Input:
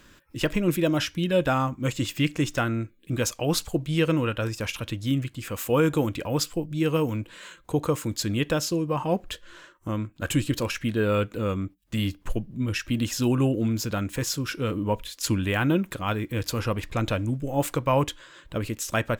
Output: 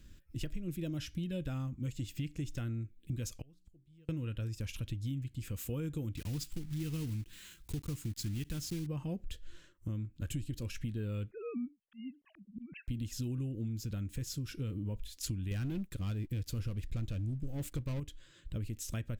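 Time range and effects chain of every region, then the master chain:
3.41–4.09 s: de-hum 60.41 Hz, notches 6 + de-esser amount 85% + inverted gate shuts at -27 dBFS, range -32 dB
6.17–8.87 s: block-companded coder 3-bit + peaking EQ 540 Hz -10 dB 0.55 oct + tape noise reduction on one side only encoder only
11.31–12.88 s: formants replaced by sine waves + slow attack 429 ms
15.51–18.00 s: waveshaping leveller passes 3 + upward expansion, over -31 dBFS
whole clip: amplifier tone stack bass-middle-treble 10-0-1; compression, threshold -46 dBFS; trim +11.5 dB

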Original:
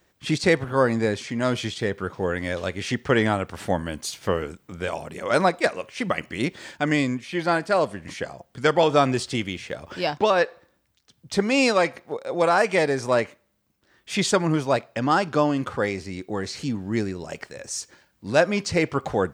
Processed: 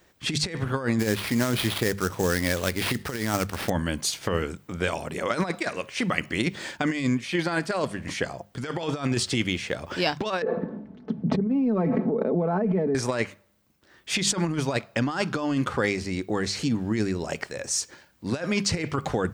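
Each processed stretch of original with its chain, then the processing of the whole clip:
0.99–3.70 s: sample-rate reducer 7 kHz, jitter 20% + tape noise reduction on one side only encoder only
10.42–12.95 s: ladder band-pass 250 Hz, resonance 35% + comb 4.6 ms + level flattener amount 100%
whole clip: hum notches 50/100/150/200 Hz; dynamic bell 650 Hz, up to -6 dB, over -33 dBFS, Q 0.82; compressor with a negative ratio -26 dBFS, ratio -0.5; trim +2.5 dB

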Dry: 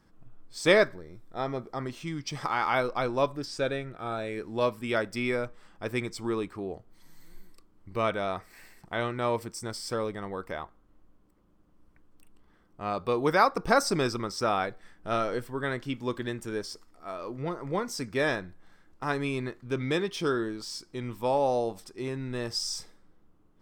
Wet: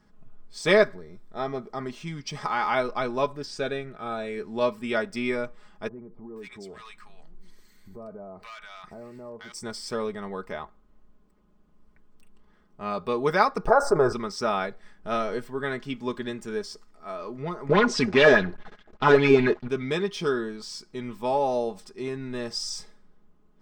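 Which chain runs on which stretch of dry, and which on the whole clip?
5.88–9.52 s: hard clipper -23.5 dBFS + bands offset in time lows, highs 480 ms, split 1 kHz + compression 4:1, threshold -41 dBFS
13.67–14.13 s: FFT filter 130 Hz 0 dB, 190 Hz -17 dB, 390 Hz +1 dB, 580 Hz +5 dB, 1.4 kHz +1 dB, 2.6 kHz -28 dB, 8.6 kHz -14 dB + level flattener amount 50%
17.69–19.68 s: waveshaping leveller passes 3 + distance through air 100 m + sweeping bell 4.9 Hz 340–3700 Hz +11 dB
whole clip: peaking EQ 12 kHz -12.5 dB 0.49 oct; comb 4.8 ms, depth 59%

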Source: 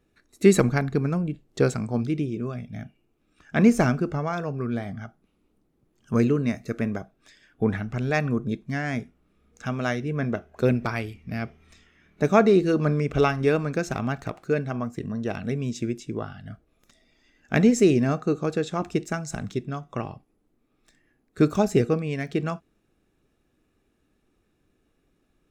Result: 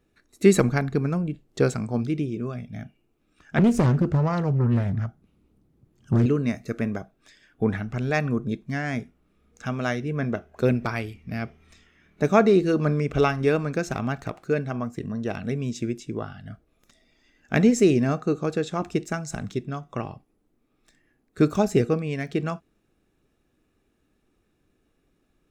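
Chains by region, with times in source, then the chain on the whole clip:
3.58–6.26 s: peaking EQ 100 Hz +12.5 dB 2 oct + compression 3:1, threshold -15 dBFS + loudspeaker Doppler distortion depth 0.54 ms
whole clip: none

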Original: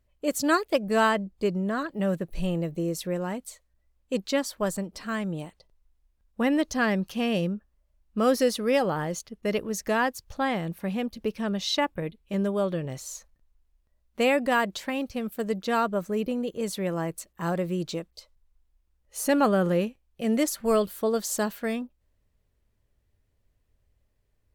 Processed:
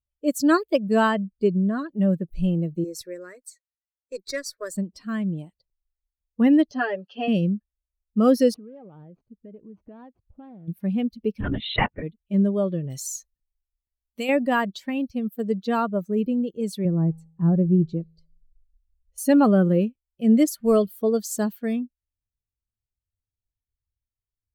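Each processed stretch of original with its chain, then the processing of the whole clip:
2.84–4.74 s: frequency weighting D + valve stage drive 15 dB, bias 0.5 + static phaser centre 820 Hz, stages 6
6.71–7.28 s: cabinet simulation 440–4100 Hz, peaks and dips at 1.1 kHz -6 dB, 2.2 kHz -8 dB, 3.7 kHz -7 dB + comb 7 ms, depth 98% + three bands compressed up and down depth 40%
8.54–10.68 s: median filter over 25 samples + low-pass 2.3 kHz + compression 4:1, threshold -39 dBFS
11.40–12.03 s: LPC vocoder at 8 kHz whisper + peaking EQ 2 kHz +10 dB 1.4 oct
12.90–14.29 s: peaking EQ 13 kHz +12 dB 2.8 oct + compression 3:1, threshold -28 dBFS
16.85–19.18 s: tilt EQ -3.5 dB/octave + feedback comb 54 Hz, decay 0.95 s, harmonics odd, mix 40%
whole clip: expander on every frequency bin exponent 1.5; peaking EQ 230 Hz +8.5 dB 1.9 oct; trim +1.5 dB

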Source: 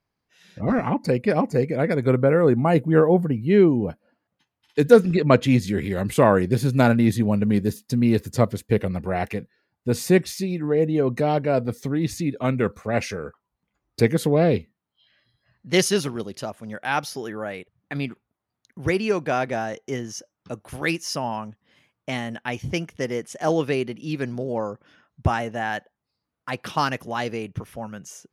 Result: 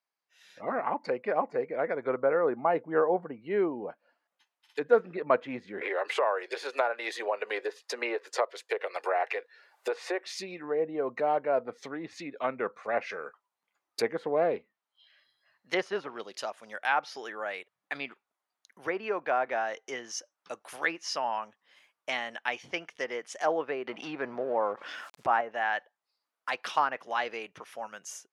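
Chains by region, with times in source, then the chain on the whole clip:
5.81–10.26 s: steep high-pass 390 Hz + three bands compressed up and down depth 100%
23.87–25.41 s: companding laws mixed up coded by A + level flattener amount 50%
whole clip: low-pass that closes with the level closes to 1.3 kHz, closed at -19 dBFS; high-pass 700 Hz 12 dB/octave; level rider gain up to 7.5 dB; trim -7.5 dB

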